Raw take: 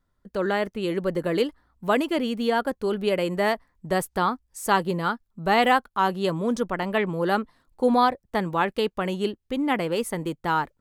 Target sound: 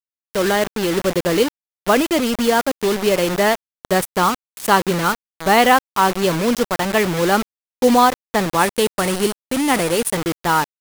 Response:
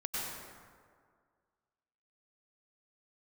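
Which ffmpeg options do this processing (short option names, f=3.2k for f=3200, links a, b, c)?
-filter_complex "[0:a]acrusher=bits=4:mix=0:aa=0.000001,asettb=1/sr,asplit=3[a][b][c];[a]atrim=end=8.594[d];[b]atrim=start=8.59:end=10.15,asetpts=PTS-STARTPTS,afade=t=in:d=0.004:c=qsin,afade=t=out:st=1.556:d=0.004:c=qsin,equalizer=f=9.5k:t=o:w=0.34:g=9.5[e];[c]atrim=start=10.146[f];[d][e]acrossfade=d=0.004:c1=hsin:c2=qsin[g];[g][f]acrossfade=d=0.004:c1=qsin:c2=hsin,volume=6.5dB"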